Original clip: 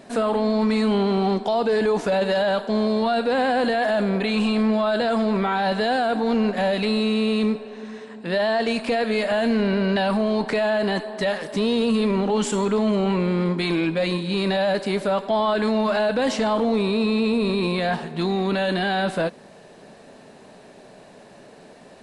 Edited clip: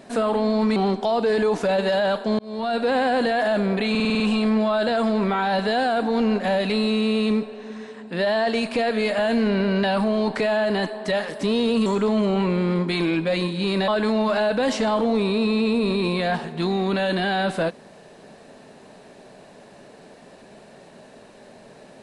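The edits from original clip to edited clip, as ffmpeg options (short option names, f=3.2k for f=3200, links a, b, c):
-filter_complex "[0:a]asplit=11[a][b][c][d][e][f][g][h][i][j][k];[a]atrim=end=0.762[l];[b]atrim=start=1.188:end=2.82,asetpts=PTS-STARTPTS,afade=t=out:st=1.628:d=0.004:c=hsin[m];[c]atrim=start=2.82:end=4.382,asetpts=PTS-STARTPTS,afade=t=in:d=0.42[n];[d]atrim=start=4.328:end=4.382[o];[e]atrim=start=4.328:end=4.382[p];[f]atrim=start=4.328:end=4.382[q];[g]atrim=start=4.328:end=4.382[r];[h]atrim=start=4.328:end=4.382[s];[i]atrim=start=4.328:end=11.992[t];[j]atrim=start=12.558:end=14.582[u];[k]atrim=start=15.468[v];[m][n]concat=n=2:v=0:a=1[w];[l][w]acrossfade=d=0.004:c1=hsin:c2=hsin[x];[x][o]acrossfade=d=0.004:c1=hsin:c2=hsin[y];[y][p]acrossfade=d=0.004:c1=hsin:c2=hsin[z];[z][q]acrossfade=d=0.004:c1=hsin:c2=hsin[aa];[aa][r]acrossfade=d=0.004:c1=hsin:c2=hsin[ab];[ab][s]acrossfade=d=0.004:c1=hsin:c2=hsin[ac];[ac][t]acrossfade=d=0.004:c1=hsin:c2=hsin[ad];[ad][u]acrossfade=d=0.004:c1=hsin:c2=hsin[ae];[ae][v]acrossfade=d=0.004:c1=hsin:c2=hsin"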